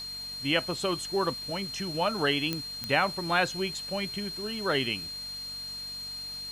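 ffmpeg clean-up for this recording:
-af "adeclick=t=4,bandreject=f=47.3:t=h:w=4,bandreject=f=94.6:t=h:w=4,bandreject=f=141.9:t=h:w=4,bandreject=f=189.2:t=h:w=4,bandreject=f=236.5:t=h:w=4,bandreject=f=4200:w=30,afwtdn=0.0035"

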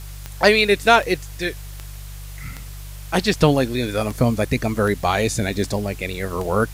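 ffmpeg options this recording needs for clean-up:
-af "adeclick=t=4,bandreject=f=49.1:t=h:w=4,bandreject=f=98.2:t=h:w=4,bandreject=f=147.3:t=h:w=4,afwtdn=0.0071"

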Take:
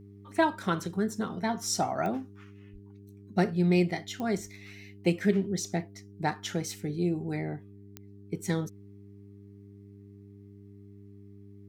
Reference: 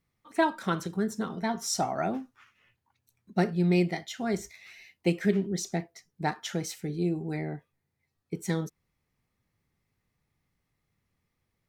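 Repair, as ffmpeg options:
-filter_complex "[0:a]adeclick=t=4,bandreject=f=100.3:t=h:w=4,bandreject=f=200.6:t=h:w=4,bandreject=f=300.9:t=h:w=4,bandreject=f=401.2:t=h:w=4,asplit=3[s0][s1][s2];[s0]afade=t=out:st=2.72:d=0.02[s3];[s1]highpass=f=140:w=0.5412,highpass=f=140:w=1.3066,afade=t=in:st=2.72:d=0.02,afade=t=out:st=2.84:d=0.02[s4];[s2]afade=t=in:st=2.84:d=0.02[s5];[s3][s4][s5]amix=inputs=3:normalize=0"

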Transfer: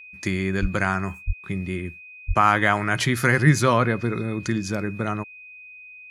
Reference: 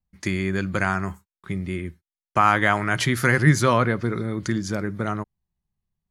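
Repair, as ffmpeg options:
-filter_complex "[0:a]bandreject=f=2500:w=30,asplit=3[s0][s1][s2];[s0]afade=t=out:st=0.61:d=0.02[s3];[s1]highpass=f=140:w=0.5412,highpass=f=140:w=1.3066,afade=t=in:st=0.61:d=0.02,afade=t=out:st=0.73:d=0.02[s4];[s2]afade=t=in:st=0.73:d=0.02[s5];[s3][s4][s5]amix=inputs=3:normalize=0,asplit=3[s6][s7][s8];[s6]afade=t=out:st=1.26:d=0.02[s9];[s7]highpass=f=140:w=0.5412,highpass=f=140:w=1.3066,afade=t=in:st=1.26:d=0.02,afade=t=out:st=1.38:d=0.02[s10];[s8]afade=t=in:st=1.38:d=0.02[s11];[s9][s10][s11]amix=inputs=3:normalize=0,asplit=3[s12][s13][s14];[s12]afade=t=out:st=2.27:d=0.02[s15];[s13]highpass=f=140:w=0.5412,highpass=f=140:w=1.3066,afade=t=in:st=2.27:d=0.02,afade=t=out:st=2.39:d=0.02[s16];[s14]afade=t=in:st=2.39:d=0.02[s17];[s15][s16][s17]amix=inputs=3:normalize=0"

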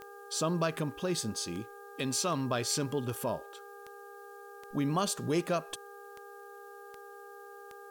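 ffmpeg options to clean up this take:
-af "adeclick=t=4,bandreject=f=403.2:t=h:w=4,bandreject=f=806.4:t=h:w=4,bandreject=f=1209.6:t=h:w=4,bandreject=f=1612.8:t=h:w=4,bandreject=f=470:w=30,agate=range=0.0891:threshold=0.00891"

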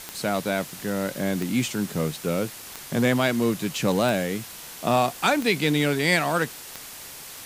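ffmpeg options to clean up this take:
-af "adeclick=t=4,afwtdn=0.011"

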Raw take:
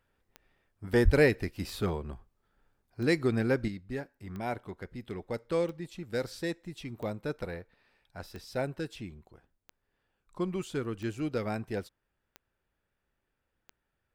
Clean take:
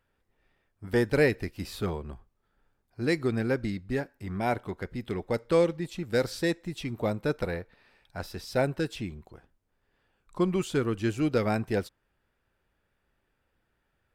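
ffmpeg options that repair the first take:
-filter_complex "[0:a]adeclick=t=4,asplit=3[s0][s1][s2];[s0]afade=t=out:st=1.04:d=0.02[s3];[s1]highpass=f=140:w=0.5412,highpass=f=140:w=1.3066,afade=t=in:st=1.04:d=0.02,afade=t=out:st=1.16:d=0.02[s4];[s2]afade=t=in:st=1.16:d=0.02[s5];[s3][s4][s5]amix=inputs=3:normalize=0,asetnsamples=n=441:p=0,asendcmd='3.68 volume volume 6.5dB',volume=1"

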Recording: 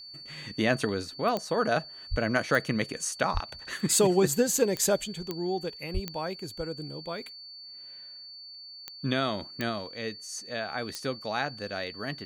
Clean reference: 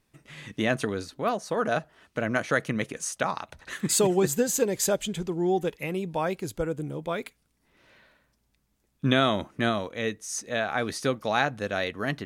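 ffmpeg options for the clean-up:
-filter_complex "[0:a]adeclick=t=4,bandreject=f=4500:w=30,asplit=3[s0][s1][s2];[s0]afade=t=out:st=2.1:d=0.02[s3];[s1]highpass=f=140:w=0.5412,highpass=f=140:w=1.3066,afade=t=in:st=2.1:d=0.02,afade=t=out:st=2.22:d=0.02[s4];[s2]afade=t=in:st=2.22:d=0.02[s5];[s3][s4][s5]amix=inputs=3:normalize=0,asplit=3[s6][s7][s8];[s6]afade=t=out:st=3.33:d=0.02[s9];[s7]highpass=f=140:w=0.5412,highpass=f=140:w=1.3066,afade=t=in:st=3.33:d=0.02,afade=t=out:st=3.45:d=0.02[s10];[s8]afade=t=in:st=3.45:d=0.02[s11];[s9][s10][s11]amix=inputs=3:normalize=0,asplit=3[s12][s13][s14];[s12]afade=t=out:st=5.93:d=0.02[s15];[s13]highpass=f=140:w=0.5412,highpass=f=140:w=1.3066,afade=t=in:st=5.93:d=0.02,afade=t=out:st=6.05:d=0.02[s16];[s14]afade=t=in:st=6.05:d=0.02[s17];[s15][s16][s17]amix=inputs=3:normalize=0,asetnsamples=n=441:p=0,asendcmd='5.04 volume volume 6dB',volume=1"

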